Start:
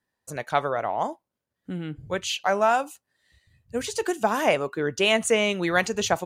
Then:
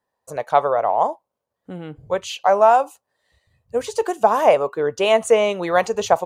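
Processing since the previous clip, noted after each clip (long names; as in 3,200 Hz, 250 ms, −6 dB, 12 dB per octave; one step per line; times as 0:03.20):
flat-topped bell 710 Hz +10.5 dB
level −2 dB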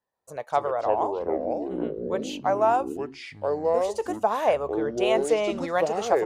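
delay with pitch and tempo change per echo 158 ms, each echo −5 semitones, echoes 3
level −8 dB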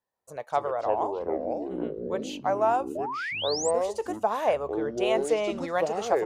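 sound drawn into the spectrogram rise, 0:02.95–0:03.71, 570–8,800 Hz −30 dBFS
level −2.5 dB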